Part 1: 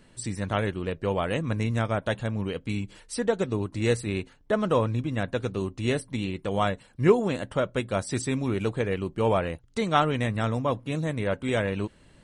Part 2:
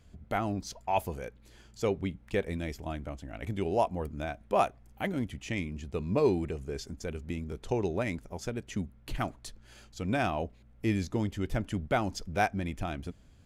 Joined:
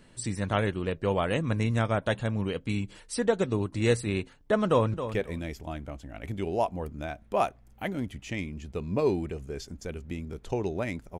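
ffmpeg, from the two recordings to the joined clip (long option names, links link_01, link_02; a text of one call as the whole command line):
ffmpeg -i cue0.wav -i cue1.wav -filter_complex "[0:a]apad=whole_dur=11.19,atrim=end=11.19,atrim=end=4.942[link_01];[1:a]atrim=start=2.128:end=8.38[link_02];[link_01][link_02]acrossfade=duration=0.004:curve1=hsin:curve2=hsin,asplit=2[link_03][link_04];[link_04]afade=type=in:start_time=4.65:duration=0.01,afade=type=out:start_time=4.94:duration=0.01,aecho=0:1:270|540:0.298538|0.0447807[link_05];[link_03][link_05]amix=inputs=2:normalize=0" out.wav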